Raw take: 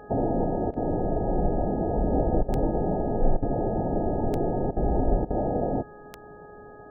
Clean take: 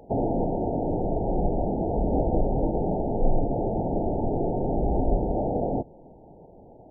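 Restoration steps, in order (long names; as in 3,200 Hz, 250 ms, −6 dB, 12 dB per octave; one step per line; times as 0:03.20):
click removal
hum removal 417.3 Hz, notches 4
repair the gap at 0:00.71/0:02.43/0:03.37/0:04.71/0:05.25, 53 ms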